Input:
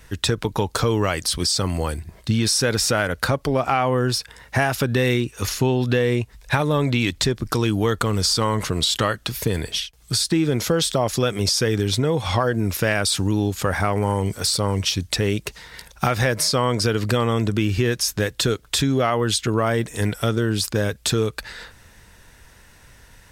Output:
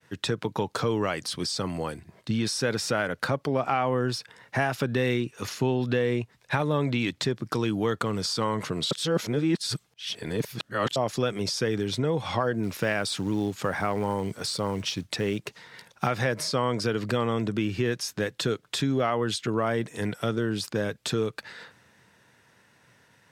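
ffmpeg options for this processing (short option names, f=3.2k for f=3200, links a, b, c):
-filter_complex "[0:a]asettb=1/sr,asplit=3[a][b][c];[a]atrim=end=12.634[d];[b]atrim=start=12.63:end=15.56,asetpts=PTS-STARTPTS,afade=t=in:d=0.004:c=qsin,afade=t=out:st=2.926:d=0.004:c=qsin,acrusher=bits=6:mode=log:mix=0:aa=0.000001[e];[c]atrim=start=15.556[f];[d][e]acrossfade=d=0.004:c1=hsin:c2=qsin[g];[g][f]acrossfade=d=0.004:c1=qsin:c2=hsin,asplit=3[h][i][j];[h]atrim=end=8.912[k];[i]atrim=start=8.908:end=10.962,asetpts=PTS-STARTPTS,areverse[l];[j]atrim=start=10.958[m];[k][l]acrossfade=d=0.004:c1=hsin:c2=hsin[n];[n][m]acrossfade=d=0.004:c1=hsin:c2=hsin,highpass=f=120:w=0.5412,highpass=f=120:w=1.3066,agate=range=-33dB:threshold=-49dB:ratio=3:detection=peak,lowpass=f=3.7k:p=1,volume=-5dB"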